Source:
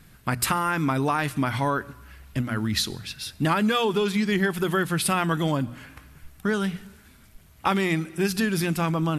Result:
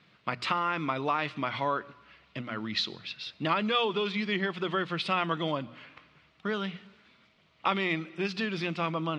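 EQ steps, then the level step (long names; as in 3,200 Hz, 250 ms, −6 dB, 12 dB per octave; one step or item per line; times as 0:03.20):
loudspeaker in its box 220–4,000 Hz, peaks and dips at 260 Hz −7 dB, 400 Hz −4 dB, 820 Hz −6 dB, 1,600 Hz −9 dB
low-shelf EQ 390 Hz −4.5 dB
0.0 dB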